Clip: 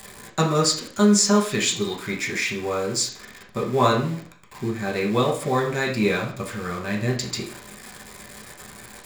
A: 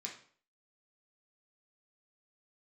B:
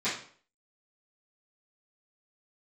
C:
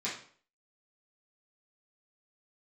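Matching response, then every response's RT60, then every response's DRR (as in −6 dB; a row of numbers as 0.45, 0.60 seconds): A; 0.50, 0.50, 0.50 seconds; −2.5, −16.5, −10.5 decibels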